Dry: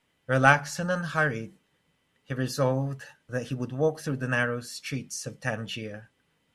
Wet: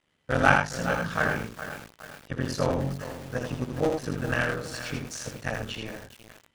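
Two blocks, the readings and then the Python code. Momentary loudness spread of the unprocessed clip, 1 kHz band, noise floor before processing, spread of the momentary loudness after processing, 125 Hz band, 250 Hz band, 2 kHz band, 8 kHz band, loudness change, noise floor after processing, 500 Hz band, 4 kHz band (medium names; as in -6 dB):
15 LU, 0.0 dB, -72 dBFS, 15 LU, -1.5 dB, +0.5 dB, 0.0 dB, -1.0 dB, -0.5 dB, -71 dBFS, -0.5 dB, +0.5 dB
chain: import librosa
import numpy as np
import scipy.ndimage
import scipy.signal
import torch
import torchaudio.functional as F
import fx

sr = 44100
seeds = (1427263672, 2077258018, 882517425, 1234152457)

p1 = fx.cycle_switch(x, sr, every=3, mode='muted')
p2 = scipy.signal.sosfilt(scipy.signal.butter(2, 9300.0, 'lowpass', fs=sr, output='sos'), p1)
p3 = p2 + fx.echo_single(p2, sr, ms=81, db=-5.0, dry=0)
y = fx.echo_crushed(p3, sr, ms=414, feedback_pct=55, bits=6, wet_db=-10.5)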